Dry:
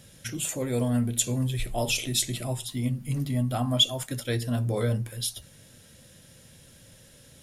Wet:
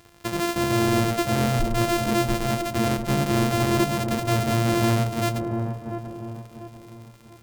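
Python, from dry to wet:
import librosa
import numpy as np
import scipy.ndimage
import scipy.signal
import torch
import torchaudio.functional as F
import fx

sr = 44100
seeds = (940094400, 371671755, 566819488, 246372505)

y = np.r_[np.sort(x[:len(x) // 128 * 128].reshape(-1, 128), axis=1).ravel(), x[len(x) // 128 * 128:]]
y = fx.leveller(y, sr, passes=2)
y = 10.0 ** (-15.5 / 20.0) * np.tanh(y / 10.0 ** (-15.5 / 20.0))
y = fx.echo_wet_lowpass(y, sr, ms=692, feedback_pct=38, hz=940.0, wet_db=-5)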